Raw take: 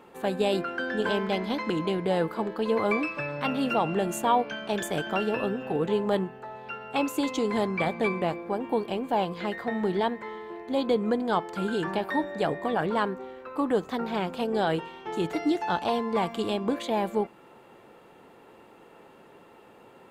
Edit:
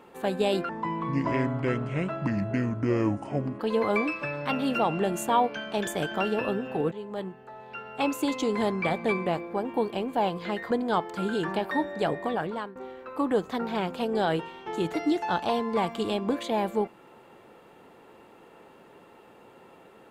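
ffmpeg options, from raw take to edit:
ffmpeg -i in.wav -filter_complex "[0:a]asplit=6[link_01][link_02][link_03][link_04][link_05][link_06];[link_01]atrim=end=0.694[link_07];[link_02]atrim=start=0.69:end=2.55,asetpts=PTS-STARTPTS,asetrate=28224,aresample=44100[link_08];[link_03]atrim=start=2.546:end=5.87,asetpts=PTS-STARTPTS,afade=type=out:start_time=3.32:duration=0.004:curve=hsin:silence=0.177828[link_09];[link_04]atrim=start=5.87:end=9.662,asetpts=PTS-STARTPTS,afade=type=in:duration=1.15:silence=0.177828[link_10];[link_05]atrim=start=11.098:end=13.15,asetpts=PTS-STARTPTS,afade=type=out:start_time=1.522:duration=0.53:silence=0.141254[link_11];[link_06]atrim=start=13.15,asetpts=PTS-STARTPTS,afade=type=in:duration=0.004:curve=hsin:silence=0.141254[link_12];[link_07][link_08]acrossfade=duration=0.004:curve1=hsin:curve2=hsin[link_13];[link_09][link_10]concat=n=2:v=0:a=1[link_14];[link_13][link_14]acrossfade=duration=0.004:curve1=hsin:curve2=hsin[link_15];[link_11][link_12]concat=n=2:v=0:a=1[link_16];[link_15][link_16]acrossfade=duration=0.004:curve1=hsin:curve2=hsin" out.wav

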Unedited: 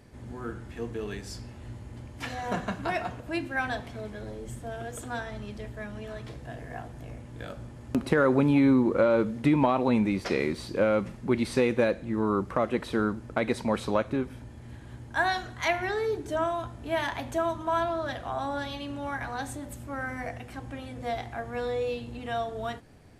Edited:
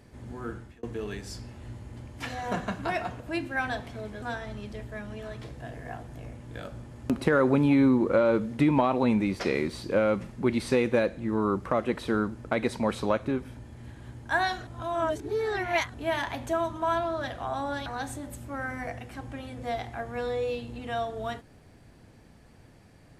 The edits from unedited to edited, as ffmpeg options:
ffmpeg -i in.wav -filter_complex "[0:a]asplit=6[link_01][link_02][link_03][link_04][link_05][link_06];[link_01]atrim=end=0.83,asetpts=PTS-STARTPTS,afade=type=out:start_time=0.55:duration=0.28[link_07];[link_02]atrim=start=0.83:end=4.222,asetpts=PTS-STARTPTS,afade=type=in:duration=0.004:curve=hsin[link_08];[link_03]atrim=start=5.068:end=15.522[link_09];[link_04]atrim=start=15.518:end=16.792,asetpts=PTS-STARTPTS,areverse[link_10];[link_05]atrim=start=16.788:end=18.712[link_11];[link_06]atrim=start=19.248[link_12];[link_07][link_08]concat=n=2:v=0:a=1[link_13];[link_13][link_09]acrossfade=duration=0.004:curve1=hsin:curve2=hsin[link_14];[link_14][link_10]acrossfade=duration=0.004:curve1=hsin:curve2=hsin[link_15];[link_15][link_11]acrossfade=duration=0.004:curve1=hsin:curve2=hsin[link_16];[link_16][link_12]acrossfade=duration=0.004:curve1=hsin:curve2=hsin" out.wav

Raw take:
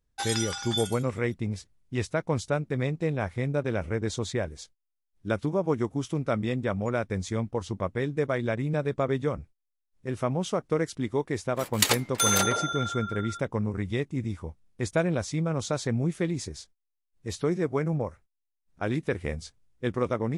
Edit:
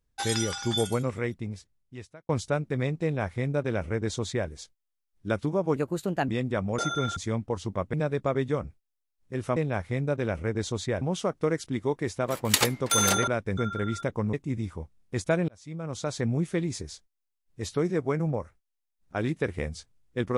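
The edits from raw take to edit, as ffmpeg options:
ffmpeg -i in.wav -filter_complex "[0:a]asplit=13[link_01][link_02][link_03][link_04][link_05][link_06][link_07][link_08][link_09][link_10][link_11][link_12][link_13];[link_01]atrim=end=2.29,asetpts=PTS-STARTPTS,afade=type=out:start_time=0.96:duration=1.33[link_14];[link_02]atrim=start=2.29:end=5.764,asetpts=PTS-STARTPTS,afade=type=in:duration=0.004:curve=hsin[link_15];[link_03]atrim=start=5.76:end=6.41,asetpts=PTS-STARTPTS,asetrate=54684,aresample=44100[link_16];[link_04]atrim=start=6.406:end=6.912[link_17];[link_05]atrim=start=12.558:end=12.942[link_18];[link_06]atrim=start=7.208:end=7.982[link_19];[link_07]atrim=start=8.668:end=10.302[link_20];[link_08]atrim=start=3.028:end=4.482[link_21];[link_09]atrim=start=10.298:end=12.562[link_22];[link_10]atrim=start=6.908:end=7.212[link_23];[link_11]atrim=start=12.938:end=13.702[link_24];[link_12]atrim=start=13.998:end=15.15,asetpts=PTS-STARTPTS,afade=type=out:start_time=1.148:duration=0.004:curve=hsin[link_25];[link_13]atrim=start=15.15,asetpts=PTS-STARTPTS,afade=type=in:duration=0.77[link_26];[link_14][link_15]concat=n=2:v=0:a=1[link_27];[link_27][link_16]acrossfade=duration=0.004:curve1=hsin:curve2=hsin[link_28];[link_28][link_17]acrossfade=duration=0.004:curve1=hsin:curve2=hsin[link_29];[link_29][link_18]acrossfade=duration=0.004:curve1=hsin:curve2=hsin[link_30];[link_30][link_19]acrossfade=duration=0.004:curve1=hsin:curve2=hsin[link_31];[link_31][link_20]acrossfade=duration=0.004:curve1=hsin:curve2=hsin[link_32];[link_32][link_21]acrossfade=duration=0.004:curve1=hsin:curve2=hsin[link_33];[link_33][link_22]acrossfade=duration=0.004:curve1=hsin:curve2=hsin[link_34];[link_34][link_23]acrossfade=duration=0.004:curve1=hsin:curve2=hsin[link_35];[link_35][link_24]acrossfade=duration=0.004:curve1=hsin:curve2=hsin[link_36];[link_25][link_26]concat=n=2:v=0:a=1[link_37];[link_36][link_37]acrossfade=duration=0.004:curve1=hsin:curve2=hsin" out.wav

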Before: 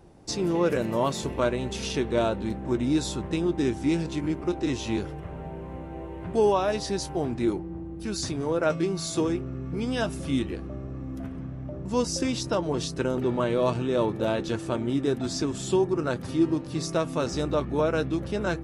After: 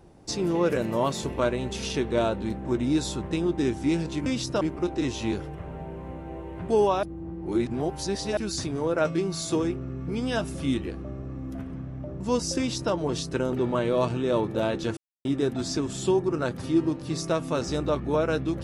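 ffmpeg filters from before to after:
ffmpeg -i in.wav -filter_complex "[0:a]asplit=7[link_01][link_02][link_03][link_04][link_05][link_06][link_07];[link_01]atrim=end=4.262[link_08];[link_02]atrim=start=12.228:end=12.582[link_09];[link_03]atrim=start=4.258:end=6.682[link_10];[link_04]atrim=start=6.678:end=8.022,asetpts=PTS-STARTPTS,areverse[link_11];[link_05]atrim=start=8.018:end=14.62,asetpts=PTS-STARTPTS,afade=type=out:start_time=6.598:duration=0.004:curve=hsin[link_12];[link_06]atrim=start=14.62:end=14.9,asetpts=PTS-STARTPTS,volume=0[link_13];[link_07]atrim=start=14.9,asetpts=PTS-STARTPTS,afade=type=in:duration=0.004:curve=hsin[link_14];[link_08][link_09]acrossfade=duration=0.004:curve1=hsin:curve2=hsin[link_15];[link_15][link_10]acrossfade=duration=0.004:curve1=hsin:curve2=hsin[link_16];[link_16][link_11]acrossfade=duration=0.004:curve1=hsin:curve2=hsin[link_17];[link_12][link_13][link_14]concat=n=3:v=0:a=1[link_18];[link_17][link_18]acrossfade=duration=0.004:curve1=hsin:curve2=hsin" out.wav

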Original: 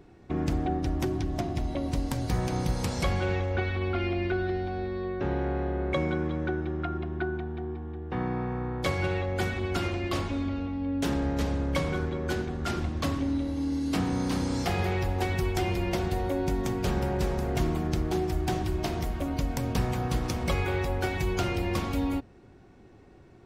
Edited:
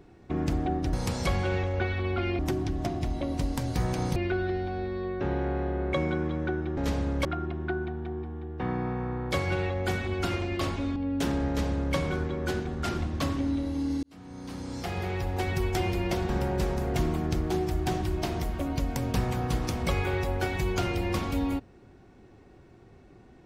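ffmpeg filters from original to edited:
ffmpeg -i in.wav -filter_complex "[0:a]asplit=9[link_01][link_02][link_03][link_04][link_05][link_06][link_07][link_08][link_09];[link_01]atrim=end=0.932[link_10];[link_02]atrim=start=2.698:end=4.162[link_11];[link_03]atrim=start=0.928:end=2.702[link_12];[link_04]atrim=start=4.158:end=6.772[link_13];[link_05]atrim=start=11.298:end=11.782[link_14];[link_06]atrim=start=6.768:end=10.482[link_15];[link_07]atrim=start=10.778:end=13.85,asetpts=PTS-STARTPTS,afade=type=out:start_time=3.068:duration=0.004:curve=hsin[link_16];[link_08]atrim=start=13.85:end=16.112,asetpts=PTS-STARTPTS,afade=type=in:duration=1.59[link_17];[link_09]atrim=start=16.898[link_18];[link_10][link_11]acrossfade=duration=0.004:curve1=hsin:curve2=hsin[link_19];[link_19][link_12]acrossfade=duration=0.004:curve1=hsin:curve2=hsin[link_20];[link_20][link_13]acrossfade=duration=0.004:curve1=hsin:curve2=hsin[link_21];[link_21][link_14]acrossfade=duration=0.004:curve1=hsin:curve2=hsin[link_22];[link_22][link_15]acrossfade=duration=0.004:curve1=hsin:curve2=hsin[link_23];[link_16][link_17]concat=n=2:v=0:a=1[link_24];[link_23][link_24]acrossfade=duration=0.004:curve1=hsin:curve2=hsin[link_25];[link_25][link_18]acrossfade=duration=0.004:curve1=hsin:curve2=hsin" out.wav

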